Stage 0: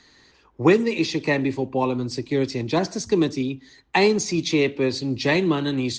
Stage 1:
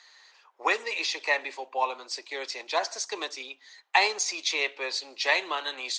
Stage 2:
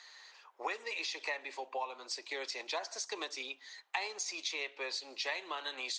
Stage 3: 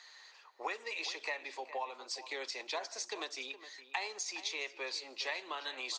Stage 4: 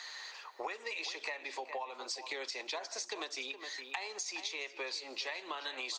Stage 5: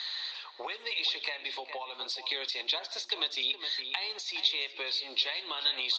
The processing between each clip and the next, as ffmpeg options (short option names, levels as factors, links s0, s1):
-af "highpass=f=660:w=0.5412,highpass=f=660:w=1.3066"
-af "acompressor=threshold=0.0141:ratio=4"
-filter_complex "[0:a]asplit=2[s0][s1];[s1]adelay=414,volume=0.224,highshelf=f=4000:g=-9.32[s2];[s0][s2]amix=inputs=2:normalize=0,volume=0.891"
-af "acompressor=threshold=0.00355:ratio=4,volume=3.16"
-af "lowpass=f=3800:t=q:w=6.9"